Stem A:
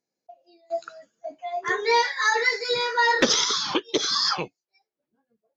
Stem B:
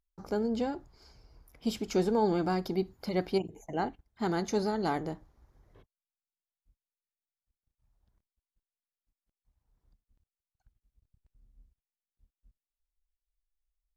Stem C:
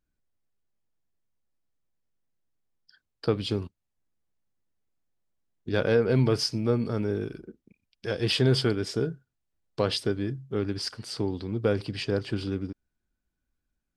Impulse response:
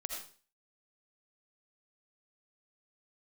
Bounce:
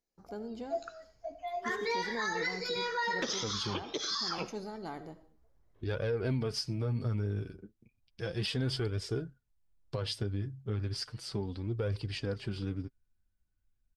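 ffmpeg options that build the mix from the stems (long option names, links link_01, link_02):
-filter_complex "[0:a]alimiter=limit=-14.5dB:level=0:latency=1:release=274,volume=-8dB,asplit=2[link_01][link_02];[link_02]volume=-9.5dB[link_03];[1:a]volume=-13.5dB,asplit=2[link_04][link_05];[link_05]volume=-7dB[link_06];[2:a]asubboost=boost=3.5:cutoff=130,flanger=delay=1.6:depth=9.2:regen=29:speed=0.34:shape=triangular,adelay=150,volume=-2dB[link_07];[3:a]atrim=start_sample=2205[link_08];[link_03][link_06]amix=inputs=2:normalize=0[link_09];[link_09][link_08]afir=irnorm=-1:irlink=0[link_10];[link_01][link_04][link_07][link_10]amix=inputs=4:normalize=0,alimiter=level_in=0.5dB:limit=-24dB:level=0:latency=1:release=136,volume=-0.5dB"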